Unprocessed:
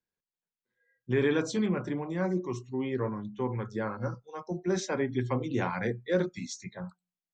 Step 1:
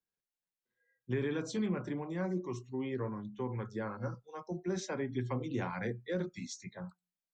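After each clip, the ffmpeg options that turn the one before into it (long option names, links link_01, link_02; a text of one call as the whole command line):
ffmpeg -i in.wav -filter_complex "[0:a]acrossover=split=240[link_01][link_02];[link_02]acompressor=threshold=-30dB:ratio=4[link_03];[link_01][link_03]amix=inputs=2:normalize=0,volume=-4.5dB" out.wav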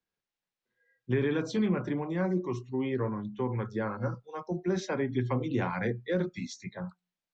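ffmpeg -i in.wav -af "lowpass=4600,volume=6dB" out.wav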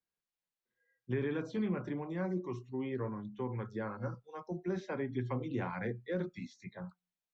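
ffmpeg -i in.wav -filter_complex "[0:a]acrossover=split=3100[link_01][link_02];[link_02]acompressor=threshold=-55dB:ratio=4:attack=1:release=60[link_03];[link_01][link_03]amix=inputs=2:normalize=0,volume=-6.5dB" out.wav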